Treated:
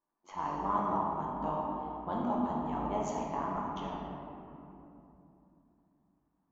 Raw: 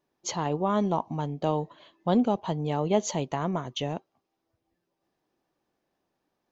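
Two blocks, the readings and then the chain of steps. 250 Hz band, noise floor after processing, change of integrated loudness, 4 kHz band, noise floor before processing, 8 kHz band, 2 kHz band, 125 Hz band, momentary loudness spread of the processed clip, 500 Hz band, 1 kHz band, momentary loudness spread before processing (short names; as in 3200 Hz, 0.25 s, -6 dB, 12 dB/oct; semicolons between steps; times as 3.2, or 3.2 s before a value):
-8.0 dB, -79 dBFS, -6.5 dB, -16.5 dB, -81 dBFS, n/a, -7.0 dB, -12.0 dB, 16 LU, -9.0 dB, -1.0 dB, 9 LU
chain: AM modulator 94 Hz, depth 70%; shoebox room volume 130 m³, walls hard, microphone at 0.65 m; low-pass opened by the level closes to 2000 Hz, open at -19 dBFS; graphic EQ 125/250/500/1000/4000 Hz -12/+3/-8/+10/-11 dB; gain -9 dB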